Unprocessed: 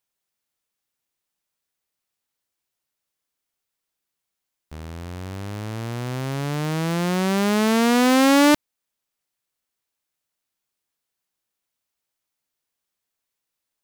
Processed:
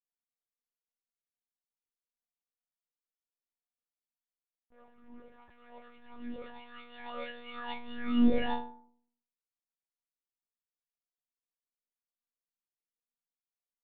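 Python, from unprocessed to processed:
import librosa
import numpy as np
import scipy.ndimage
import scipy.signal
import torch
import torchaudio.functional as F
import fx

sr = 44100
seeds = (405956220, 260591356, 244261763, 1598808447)

y = fx.env_lowpass(x, sr, base_hz=1000.0, full_db=-17.0)
y = fx.stiff_resonator(y, sr, f0_hz=260.0, decay_s=0.72, stiffness=0.03)
y = fx.lpc_monotone(y, sr, seeds[0], pitch_hz=240.0, order=10)
y = y * librosa.db_to_amplitude(1.5)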